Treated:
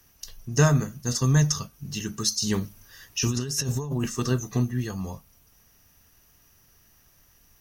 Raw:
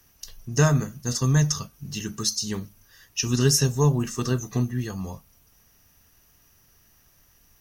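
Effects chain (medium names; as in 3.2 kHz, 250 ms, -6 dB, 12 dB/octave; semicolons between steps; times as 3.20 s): 2.42–4.07 s: compressor with a negative ratio -27 dBFS, ratio -1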